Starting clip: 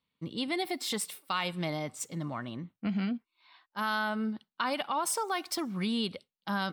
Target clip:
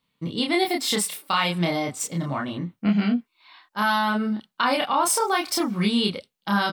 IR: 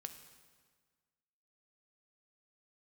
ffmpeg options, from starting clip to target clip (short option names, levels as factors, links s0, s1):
-filter_complex "[0:a]asplit=2[s0][s1];[s1]adelay=29,volume=0.794[s2];[s0][s2]amix=inputs=2:normalize=0,volume=2.37"